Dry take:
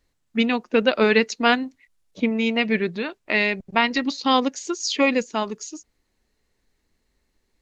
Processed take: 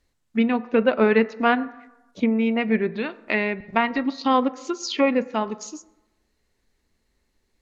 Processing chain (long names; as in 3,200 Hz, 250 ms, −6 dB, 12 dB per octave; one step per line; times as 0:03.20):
on a send at −14 dB: convolution reverb RT60 1.0 s, pre-delay 6 ms
on the sum: treble cut that deepens with the level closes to 1,800 Hz, closed at −18.5 dBFS